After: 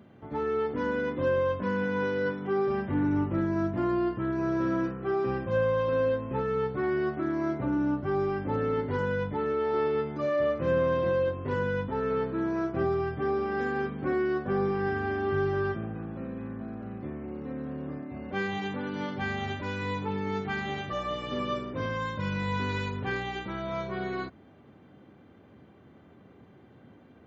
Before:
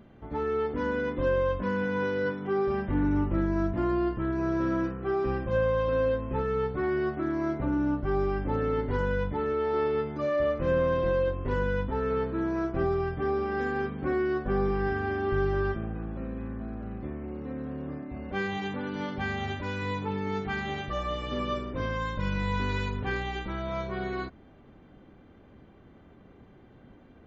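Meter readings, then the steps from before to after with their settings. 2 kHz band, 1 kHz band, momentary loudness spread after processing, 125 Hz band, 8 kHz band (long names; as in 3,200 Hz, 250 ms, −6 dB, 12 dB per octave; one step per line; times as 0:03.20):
0.0 dB, 0.0 dB, 10 LU, −1.5 dB, can't be measured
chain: high-pass filter 84 Hz 24 dB per octave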